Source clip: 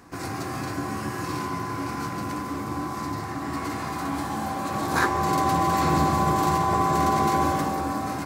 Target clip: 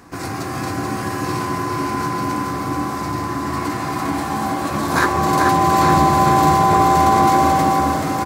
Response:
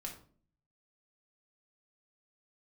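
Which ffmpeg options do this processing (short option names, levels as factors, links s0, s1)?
-af "aecho=1:1:433|866|1299|1732|2165|2598|3031|3464:0.562|0.332|0.196|0.115|0.0681|0.0402|0.0237|0.014,volume=1.88"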